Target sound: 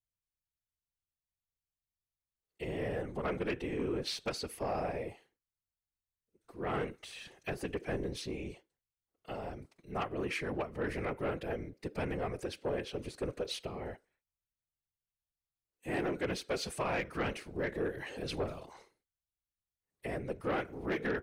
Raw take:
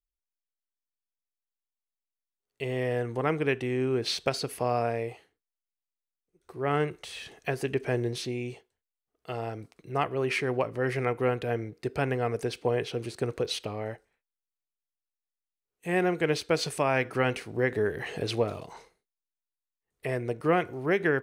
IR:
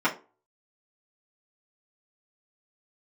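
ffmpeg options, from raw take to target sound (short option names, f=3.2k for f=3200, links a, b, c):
-af "afftfilt=real='hypot(re,im)*cos(2*PI*random(0))':imag='hypot(re,im)*sin(2*PI*random(1))':win_size=512:overlap=0.75,aeval=exprs='0.141*(cos(1*acos(clip(val(0)/0.141,-1,1)))-cos(1*PI/2))+0.0251*(cos(5*acos(clip(val(0)/0.141,-1,1)))-cos(5*PI/2))':c=same,volume=-6dB"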